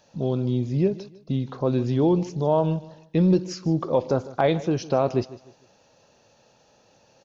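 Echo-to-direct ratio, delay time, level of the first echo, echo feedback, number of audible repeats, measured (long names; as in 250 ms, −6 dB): −17.5 dB, 152 ms, −18.0 dB, 32%, 2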